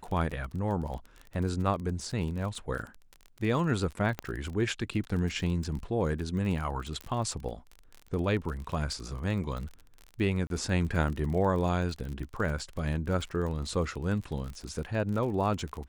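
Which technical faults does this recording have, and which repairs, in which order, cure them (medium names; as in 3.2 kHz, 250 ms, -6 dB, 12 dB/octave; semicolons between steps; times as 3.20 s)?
crackle 39 per s -35 dBFS
4.19 s: pop -19 dBFS
7.01 s: pop -24 dBFS
10.47–10.50 s: dropout 32 ms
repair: de-click; interpolate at 10.47 s, 32 ms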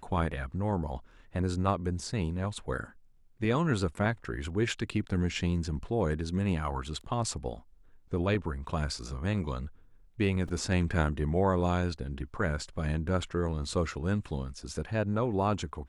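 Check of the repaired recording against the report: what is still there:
7.01 s: pop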